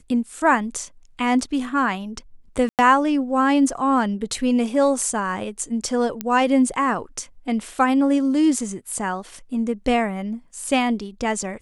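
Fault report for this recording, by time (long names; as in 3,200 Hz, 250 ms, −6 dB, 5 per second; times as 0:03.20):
0:02.69–0:02.79: drop-out 98 ms
0:06.21: click −10 dBFS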